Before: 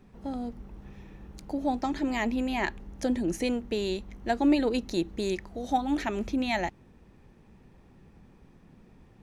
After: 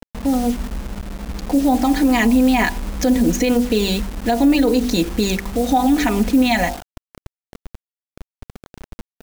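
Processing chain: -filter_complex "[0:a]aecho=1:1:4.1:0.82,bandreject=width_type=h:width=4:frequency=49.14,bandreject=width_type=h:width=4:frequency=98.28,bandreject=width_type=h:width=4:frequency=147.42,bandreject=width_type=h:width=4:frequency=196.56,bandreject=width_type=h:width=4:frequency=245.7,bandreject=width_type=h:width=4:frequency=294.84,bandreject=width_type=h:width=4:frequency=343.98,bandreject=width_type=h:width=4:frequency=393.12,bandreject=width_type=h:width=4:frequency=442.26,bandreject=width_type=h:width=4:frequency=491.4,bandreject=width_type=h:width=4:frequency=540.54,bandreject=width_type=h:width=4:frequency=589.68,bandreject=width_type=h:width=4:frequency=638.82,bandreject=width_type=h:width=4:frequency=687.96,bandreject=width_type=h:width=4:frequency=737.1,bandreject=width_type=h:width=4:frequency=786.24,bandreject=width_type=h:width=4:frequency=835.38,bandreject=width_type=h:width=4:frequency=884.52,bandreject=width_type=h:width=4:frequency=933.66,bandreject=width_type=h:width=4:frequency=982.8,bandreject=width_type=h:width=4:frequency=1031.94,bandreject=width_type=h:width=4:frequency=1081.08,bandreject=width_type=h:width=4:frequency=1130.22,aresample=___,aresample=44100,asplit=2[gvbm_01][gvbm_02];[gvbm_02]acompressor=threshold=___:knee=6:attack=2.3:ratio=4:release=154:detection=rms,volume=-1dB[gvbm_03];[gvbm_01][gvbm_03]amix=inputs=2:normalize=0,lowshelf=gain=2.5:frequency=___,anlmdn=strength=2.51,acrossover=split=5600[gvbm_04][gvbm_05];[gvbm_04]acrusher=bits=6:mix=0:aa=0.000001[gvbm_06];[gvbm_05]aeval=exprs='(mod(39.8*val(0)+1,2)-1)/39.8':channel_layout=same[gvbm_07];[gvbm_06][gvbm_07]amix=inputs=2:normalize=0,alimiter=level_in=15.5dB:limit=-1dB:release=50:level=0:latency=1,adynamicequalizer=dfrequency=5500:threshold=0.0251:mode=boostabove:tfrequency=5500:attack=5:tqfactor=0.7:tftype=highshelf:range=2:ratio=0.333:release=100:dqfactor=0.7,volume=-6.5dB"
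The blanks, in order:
16000, -34dB, 210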